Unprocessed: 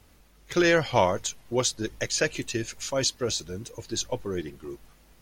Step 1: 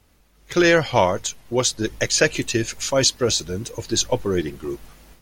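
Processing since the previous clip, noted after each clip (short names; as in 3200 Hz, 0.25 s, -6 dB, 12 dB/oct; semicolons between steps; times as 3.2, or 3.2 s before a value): AGC gain up to 12 dB; gain -2 dB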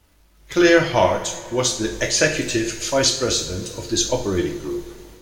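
two-slope reverb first 0.49 s, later 3.2 s, from -18 dB, DRR 1.5 dB; crackle 370/s -52 dBFS; gain -1.5 dB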